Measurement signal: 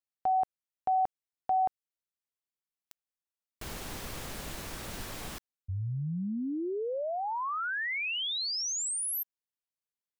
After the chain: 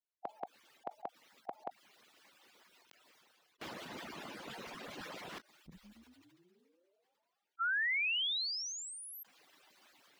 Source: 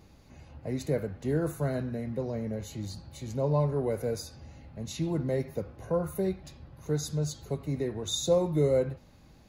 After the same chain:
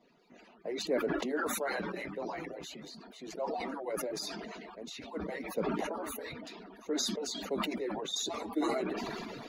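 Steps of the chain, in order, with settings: harmonic-percussive separation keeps percussive; three-band isolator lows -23 dB, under 180 Hz, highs -16 dB, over 4.6 kHz; decay stretcher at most 20 dB/s

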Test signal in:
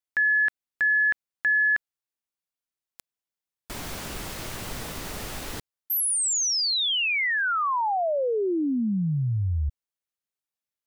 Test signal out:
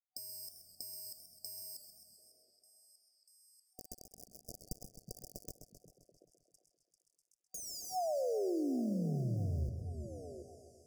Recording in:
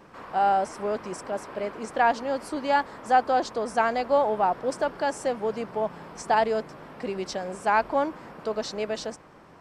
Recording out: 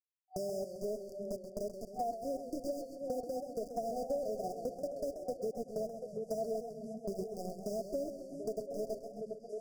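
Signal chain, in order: harmonic-percussive separation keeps harmonic; small samples zeroed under -29 dBFS; FFT band-reject 750–4700 Hz; on a send: repeats whose band climbs or falls 366 ms, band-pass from 160 Hz, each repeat 1.4 oct, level -9.5 dB; on the sum: compression 4:1, threshold -44 dBFS; treble shelf 4.1 kHz -6 dB; modulated delay 132 ms, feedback 65%, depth 109 cents, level -9.5 dB; trim +6 dB

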